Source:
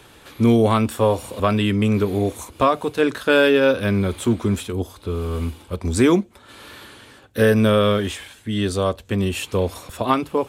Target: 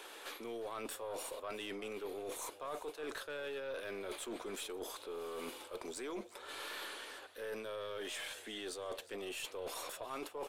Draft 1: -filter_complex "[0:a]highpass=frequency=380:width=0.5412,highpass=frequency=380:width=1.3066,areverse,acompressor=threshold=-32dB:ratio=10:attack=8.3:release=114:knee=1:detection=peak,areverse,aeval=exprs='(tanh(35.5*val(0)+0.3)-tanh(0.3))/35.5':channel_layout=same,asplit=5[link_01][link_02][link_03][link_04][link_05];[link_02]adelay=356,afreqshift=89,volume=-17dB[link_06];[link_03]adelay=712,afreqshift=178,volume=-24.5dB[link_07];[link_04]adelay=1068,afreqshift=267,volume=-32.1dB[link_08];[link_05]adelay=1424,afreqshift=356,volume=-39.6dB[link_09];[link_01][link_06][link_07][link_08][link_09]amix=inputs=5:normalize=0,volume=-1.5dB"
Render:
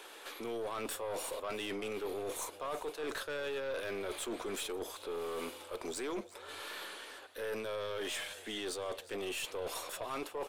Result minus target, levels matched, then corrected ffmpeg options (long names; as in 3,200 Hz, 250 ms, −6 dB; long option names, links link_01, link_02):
downward compressor: peak gain reduction −6 dB
-filter_complex "[0:a]highpass=frequency=380:width=0.5412,highpass=frequency=380:width=1.3066,areverse,acompressor=threshold=-38.5dB:ratio=10:attack=8.3:release=114:knee=1:detection=peak,areverse,aeval=exprs='(tanh(35.5*val(0)+0.3)-tanh(0.3))/35.5':channel_layout=same,asplit=5[link_01][link_02][link_03][link_04][link_05];[link_02]adelay=356,afreqshift=89,volume=-17dB[link_06];[link_03]adelay=712,afreqshift=178,volume=-24.5dB[link_07];[link_04]adelay=1068,afreqshift=267,volume=-32.1dB[link_08];[link_05]adelay=1424,afreqshift=356,volume=-39.6dB[link_09];[link_01][link_06][link_07][link_08][link_09]amix=inputs=5:normalize=0,volume=-1.5dB"